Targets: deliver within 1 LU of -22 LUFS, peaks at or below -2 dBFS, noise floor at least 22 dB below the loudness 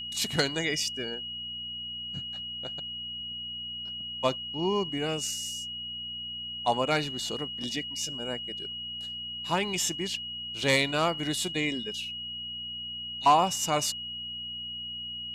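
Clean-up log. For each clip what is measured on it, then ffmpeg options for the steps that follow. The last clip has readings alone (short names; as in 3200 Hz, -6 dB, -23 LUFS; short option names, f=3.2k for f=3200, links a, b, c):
hum 60 Hz; harmonics up to 240 Hz; hum level -51 dBFS; steady tone 2900 Hz; tone level -35 dBFS; loudness -30.0 LUFS; peak -11.5 dBFS; loudness target -22.0 LUFS
-> -af "bandreject=f=60:t=h:w=4,bandreject=f=120:t=h:w=4,bandreject=f=180:t=h:w=4,bandreject=f=240:t=h:w=4"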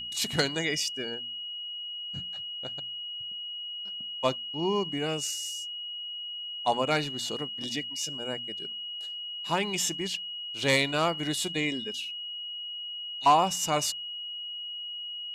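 hum none; steady tone 2900 Hz; tone level -35 dBFS
-> -af "bandreject=f=2.9k:w=30"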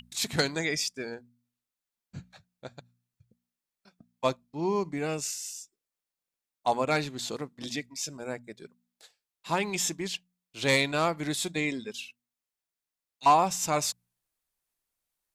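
steady tone none; loudness -29.5 LUFS; peak -12.0 dBFS; loudness target -22.0 LUFS
-> -af "volume=7.5dB"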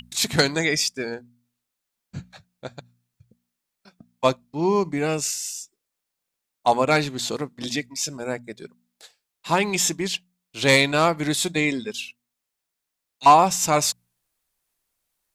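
loudness -22.0 LUFS; peak -4.5 dBFS; noise floor -83 dBFS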